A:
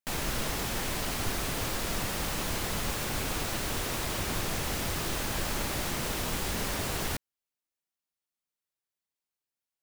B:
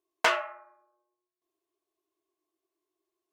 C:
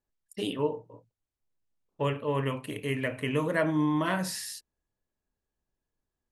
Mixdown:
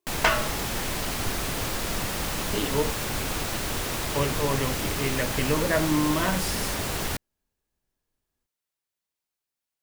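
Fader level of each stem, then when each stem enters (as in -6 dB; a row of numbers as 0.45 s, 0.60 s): +3.0 dB, +2.0 dB, +2.0 dB; 0.00 s, 0.00 s, 2.15 s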